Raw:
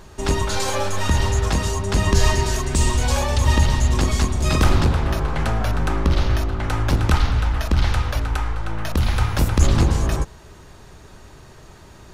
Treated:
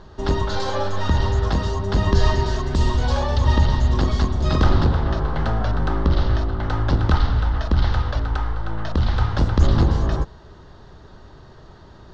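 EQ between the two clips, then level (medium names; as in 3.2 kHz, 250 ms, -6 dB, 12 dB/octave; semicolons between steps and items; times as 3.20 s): low-pass 4.6 kHz 24 dB/octave; peaking EQ 2.4 kHz -12.5 dB 0.48 oct; 0.0 dB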